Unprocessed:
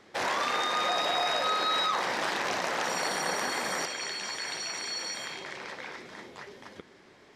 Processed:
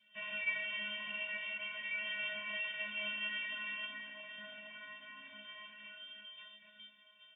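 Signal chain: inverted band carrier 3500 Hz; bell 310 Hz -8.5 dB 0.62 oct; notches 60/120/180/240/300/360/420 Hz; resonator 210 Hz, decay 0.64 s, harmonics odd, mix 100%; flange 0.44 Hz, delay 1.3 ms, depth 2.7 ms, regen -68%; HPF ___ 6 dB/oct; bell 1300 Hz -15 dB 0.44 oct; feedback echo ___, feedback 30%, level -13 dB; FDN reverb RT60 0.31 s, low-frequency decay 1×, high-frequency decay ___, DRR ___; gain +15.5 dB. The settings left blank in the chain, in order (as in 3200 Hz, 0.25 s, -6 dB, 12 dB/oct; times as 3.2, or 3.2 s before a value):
120 Hz, 0.818 s, 0.95×, 6.5 dB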